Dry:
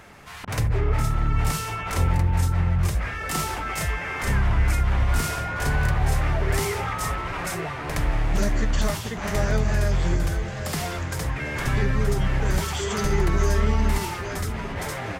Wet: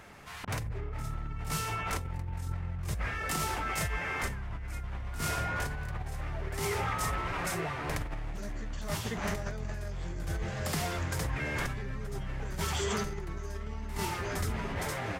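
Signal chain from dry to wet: compressor with a negative ratio -26 dBFS, ratio -1; trim -8 dB

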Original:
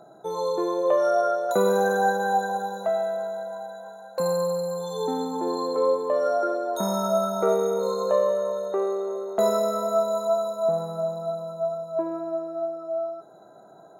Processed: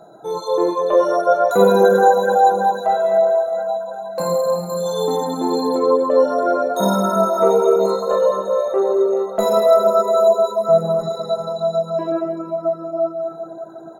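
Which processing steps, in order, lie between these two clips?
10.99–12.12 s: frequency weighting D; echo from a far wall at 180 m, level -20 dB; simulated room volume 120 m³, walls hard, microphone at 0.65 m; reverb removal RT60 0.63 s; 4.69–5.78 s: treble shelf 4.7 kHz +7.5 dB; trim +3.5 dB

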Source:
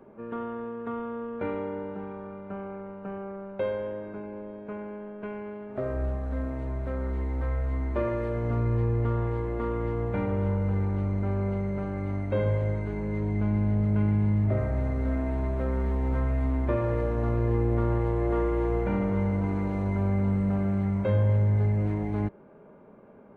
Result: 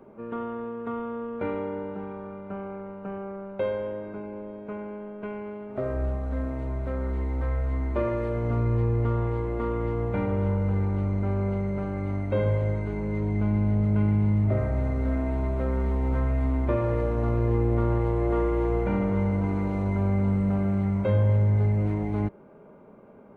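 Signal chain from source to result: band-stop 1.7 kHz, Q 13; trim +1.5 dB

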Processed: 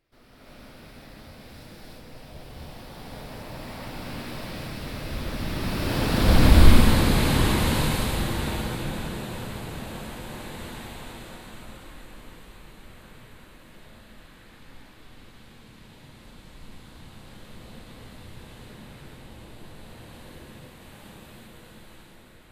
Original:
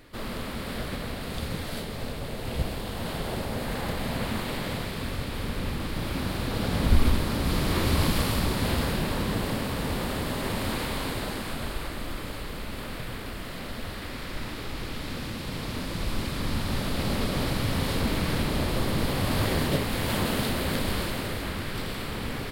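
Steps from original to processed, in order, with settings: Doppler pass-by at 6.38 s, 33 m/s, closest 18 m; gated-style reverb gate 390 ms rising, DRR -8 dB

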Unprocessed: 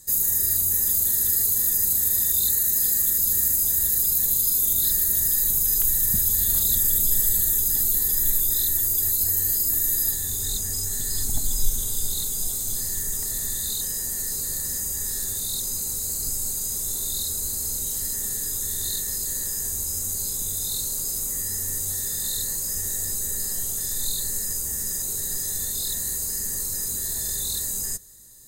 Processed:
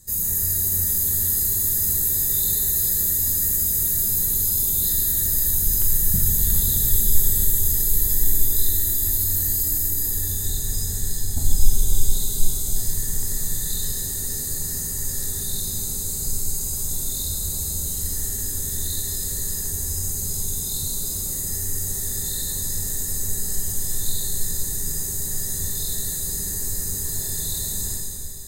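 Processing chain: bass shelf 210 Hz +11 dB; 9.67–11.37 s: compression, threshold -18 dBFS, peak gain reduction 9.5 dB; plate-style reverb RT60 3.1 s, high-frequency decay 0.95×, DRR -2.5 dB; trim -4 dB

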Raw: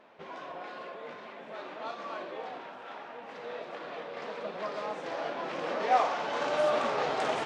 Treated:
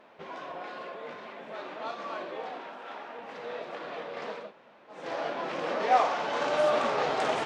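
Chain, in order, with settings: 2.50–3.19 s: steep high-pass 170 Hz; 4.43–4.99 s: room tone, crossfade 0.24 s; trim +2 dB

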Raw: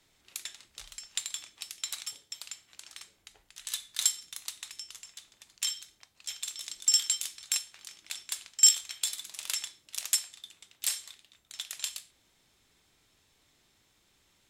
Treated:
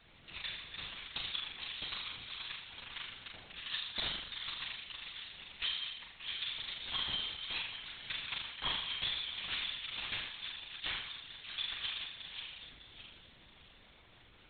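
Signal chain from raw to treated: backward echo that repeats 303 ms, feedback 54%, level -10 dB; in parallel at +1 dB: compression, threshold -47 dBFS, peak gain reduction 29 dB; on the sum: wavefolder -17.5 dBFS; flutter echo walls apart 7.1 m, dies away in 0.8 s; LPC vocoder at 8 kHz whisper

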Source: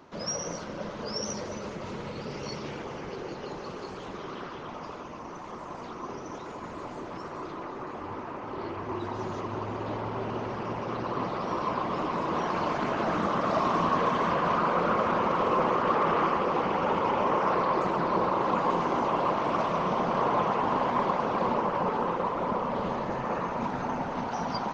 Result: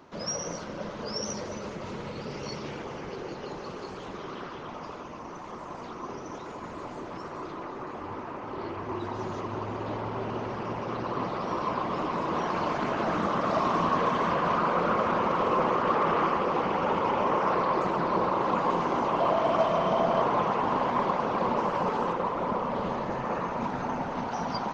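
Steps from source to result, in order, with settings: 19.20–20.22 s: small resonant body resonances 660/3100 Hz, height 11 dB; 21.57–22.13 s: treble shelf 6.1 kHz +11.5 dB

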